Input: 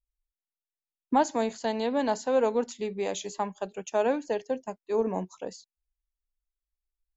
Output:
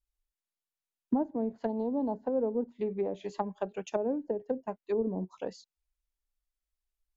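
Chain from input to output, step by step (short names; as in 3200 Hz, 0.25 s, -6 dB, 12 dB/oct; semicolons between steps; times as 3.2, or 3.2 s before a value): treble ducked by the level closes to 380 Hz, closed at -25 dBFS; 1.69–2.14 EQ curve 590 Hz 0 dB, 930 Hz +7 dB, 1800 Hz -11 dB, 4500 Hz +12 dB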